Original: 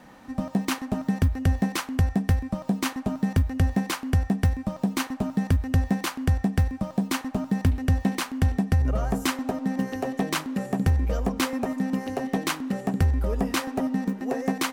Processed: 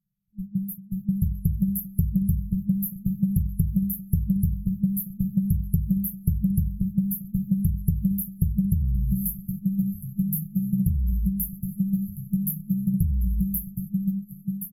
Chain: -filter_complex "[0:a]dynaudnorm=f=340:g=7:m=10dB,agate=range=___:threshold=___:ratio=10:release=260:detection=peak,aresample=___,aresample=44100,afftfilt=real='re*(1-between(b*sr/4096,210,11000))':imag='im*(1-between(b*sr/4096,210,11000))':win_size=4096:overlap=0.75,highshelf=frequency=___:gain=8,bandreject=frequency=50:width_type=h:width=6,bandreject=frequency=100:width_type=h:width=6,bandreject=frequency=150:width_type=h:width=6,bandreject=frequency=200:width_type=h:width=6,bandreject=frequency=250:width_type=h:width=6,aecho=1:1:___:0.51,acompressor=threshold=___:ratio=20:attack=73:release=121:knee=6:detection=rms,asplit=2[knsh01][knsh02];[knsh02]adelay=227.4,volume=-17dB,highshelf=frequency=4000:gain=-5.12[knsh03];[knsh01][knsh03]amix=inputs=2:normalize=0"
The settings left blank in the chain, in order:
-24dB, -25dB, 32000, 9800, 6.2, -21dB